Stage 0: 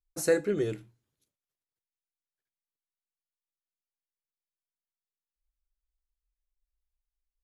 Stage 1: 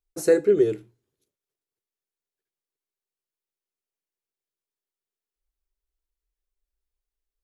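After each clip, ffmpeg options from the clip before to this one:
-af "equalizer=f=400:w=2.2:g=12"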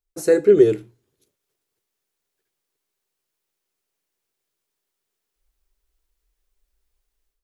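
-af "dynaudnorm=f=280:g=3:m=12dB"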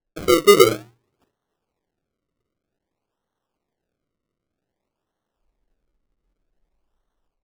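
-af "acrusher=samples=36:mix=1:aa=0.000001:lfo=1:lforange=36:lforate=0.53"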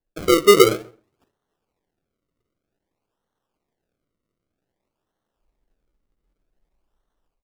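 -filter_complex "[0:a]asplit=2[a][b];[b]adelay=132,lowpass=f=1.7k:p=1,volume=-21dB,asplit=2[c][d];[d]adelay=132,lowpass=f=1.7k:p=1,volume=0.17[e];[a][c][e]amix=inputs=3:normalize=0"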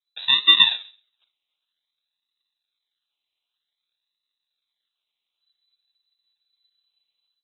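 -af "lowpass=f=3.4k:t=q:w=0.5098,lowpass=f=3.4k:t=q:w=0.6013,lowpass=f=3.4k:t=q:w=0.9,lowpass=f=3.4k:t=q:w=2.563,afreqshift=-4000,volume=-3dB"

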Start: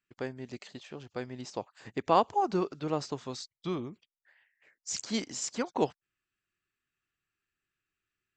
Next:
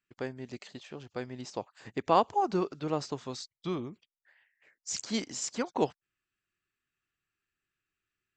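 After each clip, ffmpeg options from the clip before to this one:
-af anull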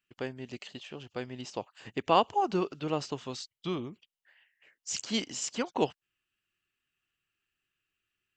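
-af "equalizer=f=2.9k:w=4:g=10"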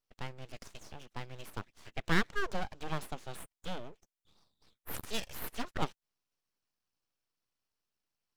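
-af "aeval=exprs='abs(val(0))':c=same,volume=-3dB"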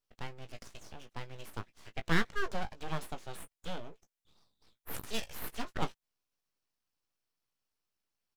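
-filter_complex "[0:a]asplit=2[a][b];[b]adelay=18,volume=-9dB[c];[a][c]amix=inputs=2:normalize=0,volume=-1dB"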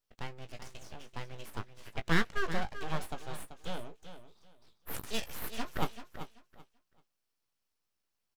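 -af "aecho=1:1:386|772|1158:0.282|0.0592|0.0124,volume=1dB"

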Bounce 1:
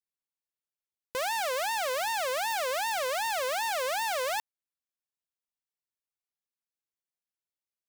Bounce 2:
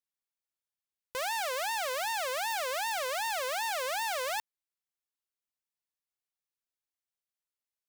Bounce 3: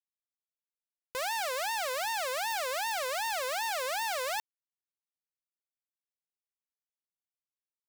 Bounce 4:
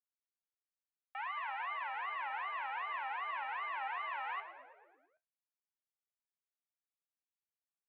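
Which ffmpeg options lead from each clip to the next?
-af "equalizer=f=240:w=0.62:g=-6,volume=-1.5dB"
-af "acrusher=bits=7:mix=0:aa=0.000001"
-filter_complex "[0:a]highpass=f=340:t=q:w=0.5412,highpass=f=340:t=q:w=1.307,lowpass=f=2.3k:t=q:w=0.5176,lowpass=f=2.3k:t=q:w=0.7071,lowpass=f=2.3k:t=q:w=1.932,afreqshift=280,flanger=delay=9.5:depth=4:regen=58:speed=0.58:shape=triangular,asplit=2[a][b];[b]asplit=7[c][d][e][f][g][h][i];[c]adelay=110,afreqshift=-75,volume=-11.5dB[j];[d]adelay=220,afreqshift=-150,volume=-15.8dB[k];[e]adelay=330,afreqshift=-225,volume=-20.1dB[l];[f]adelay=440,afreqshift=-300,volume=-24.4dB[m];[g]adelay=550,afreqshift=-375,volume=-28.7dB[n];[h]adelay=660,afreqshift=-450,volume=-33dB[o];[i]adelay=770,afreqshift=-525,volume=-37.3dB[p];[j][k][l][m][n][o][p]amix=inputs=7:normalize=0[q];[a][q]amix=inputs=2:normalize=0,volume=-2dB"

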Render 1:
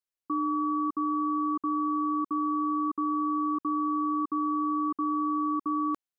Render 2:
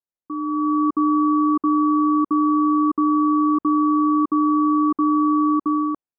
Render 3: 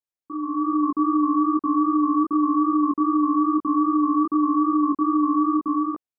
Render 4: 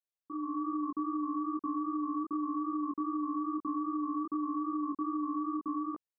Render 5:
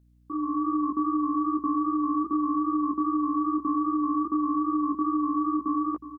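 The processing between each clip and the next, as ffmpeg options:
-af "lowpass=1k,dynaudnorm=f=230:g=5:m=12dB"
-af "flanger=delay=16:depth=7:speed=2.5"
-af "acompressor=threshold=-23dB:ratio=6,volume=-8dB"
-af "aeval=exprs='val(0)+0.000501*(sin(2*PI*60*n/s)+sin(2*PI*2*60*n/s)/2+sin(2*PI*3*60*n/s)/3+sin(2*PI*4*60*n/s)/4+sin(2*PI*5*60*n/s)/5)':c=same,aecho=1:1:365:0.211,volume=7.5dB"

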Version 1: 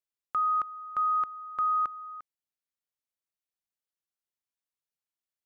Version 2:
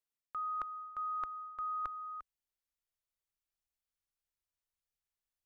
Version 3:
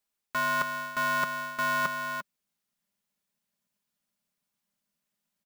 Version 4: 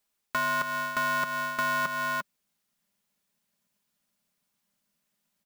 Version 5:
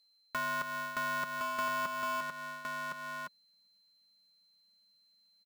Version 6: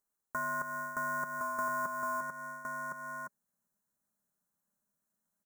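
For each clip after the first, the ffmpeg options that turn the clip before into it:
-af "asubboost=boost=10:cutoff=72,areverse,acompressor=threshold=-35dB:ratio=6,areverse,volume=-2dB"
-af "aecho=1:1:4.9:0.36,aeval=exprs='val(0)*sgn(sin(2*PI*200*n/s))':c=same,volume=8dB"
-af "acompressor=threshold=-31dB:ratio=6,volume=5dB"
-af "aeval=exprs='val(0)+0.001*sin(2*PI*4100*n/s)':c=same,aecho=1:1:1063:0.596,volume=-7dB"
-af "asuperstop=centerf=3300:order=8:qfactor=0.75"

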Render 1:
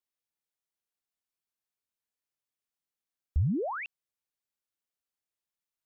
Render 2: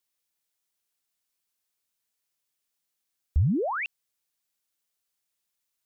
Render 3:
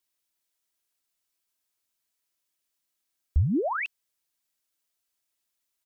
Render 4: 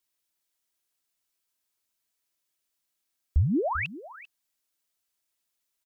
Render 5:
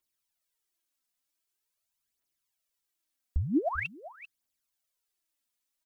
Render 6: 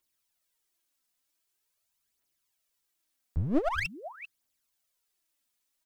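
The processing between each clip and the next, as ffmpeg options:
-af "highshelf=f=2.5k:g=7.5,volume=4dB"
-af "aecho=1:1:3.1:0.34"
-af "aecho=1:1:393:0.15"
-af "aphaser=in_gain=1:out_gain=1:delay=4.2:decay=0.56:speed=0.45:type=triangular,volume=-5dB"
-af "aeval=exprs='clip(val(0),-1,0.0133)':c=same,volume=4dB"

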